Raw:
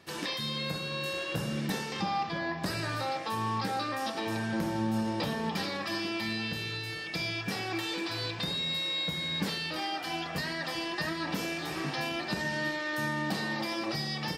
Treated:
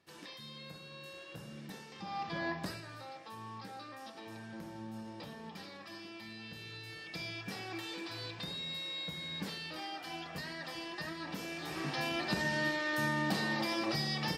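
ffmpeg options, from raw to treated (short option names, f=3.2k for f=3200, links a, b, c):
-af "volume=11.5dB,afade=t=in:st=2:d=0.48:silence=0.237137,afade=t=out:st=2.48:d=0.34:silence=0.237137,afade=t=in:st=6.34:d=0.79:silence=0.473151,afade=t=in:st=11.44:d=0.81:silence=0.421697"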